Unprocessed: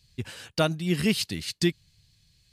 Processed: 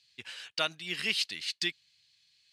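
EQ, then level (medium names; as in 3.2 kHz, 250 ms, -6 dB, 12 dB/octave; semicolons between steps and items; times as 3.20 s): band-pass filter 2.9 kHz, Q 0.91; +1.5 dB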